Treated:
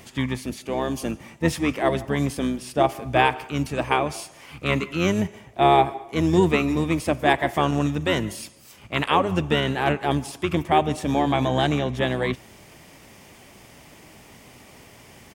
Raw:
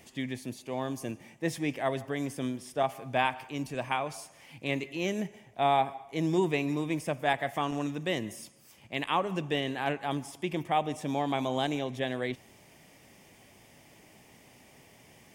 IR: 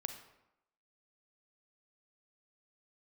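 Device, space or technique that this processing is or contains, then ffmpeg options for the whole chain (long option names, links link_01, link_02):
octave pedal: -filter_complex "[0:a]asplit=2[link_01][link_02];[link_02]asetrate=22050,aresample=44100,atempo=2,volume=-6dB[link_03];[link_01][link_03]amix=inputs=2:normalize=0,asettb=1/sr,asplit=3[link_04][link_05][link_06];[link_04]atrim=end=11.284[link_07];[link_05]atrim=start=11.28:end=11.98,asetpts=PTS-STARTPTS,afade=type=in:duration=0.004:curve=qsin,afade=type=out:start_time=0.696:duration=0.004:curve=qsin,highshelf=frequency=7600:gain=-5.5[link_08];[link_06]atrim=start=11.976[link_09];[link_07][link_08]acrossfade=duration=0.004:curve1=hsin:curve2=qsin[link_10];[link_10][link_09]acrossfade=duration=0.004:curve1=qsin:curve2=hsin,volume=8dB"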